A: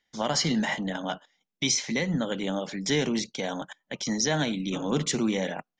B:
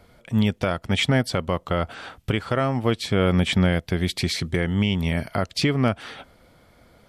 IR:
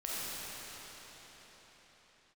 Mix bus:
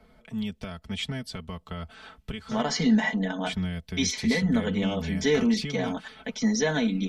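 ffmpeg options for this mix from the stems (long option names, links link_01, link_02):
-filter_complex "[0:a]aecho=1:1:4.1:0.38,adelay=2350,volume=-1dB[link_01];[1:a]acrossover=split=130|3000[link_02][link_03][link_04];[link_03]acompressor=threshold=-43dB:ratio=2[link_05];[link_02][link_05][link_04]amix=inputs=3:normalize=0,equalizer=frequency=560:width=1.5:gain=-2.5,volume=-4.5dB,asplit=3[link_06][link_07][link_08];[link_06]atrim=end=2.62,asetpts=PTS-STARTPTS,afade=type=out:start_time=2.616:duration=0.004:curve=hsin[link_09];[link_07]atrim=start=2.62:end=3.46,asetpts=PTS-STARTPTS,volume=0[link_10];[link_08]atrim=start=3.46,asetpts=PTS-STARTPTS,afade=type=in:duration=0.004:curve=hsin[link_11];[link_09][link_10][link_11]concat=n=3:v=0:a=1[link_12];[link_01][link_12]amix=inputs=2:normalize=0,highshelf=frequency=4500:gain=-10,aecho=1:1:4.6:0.8"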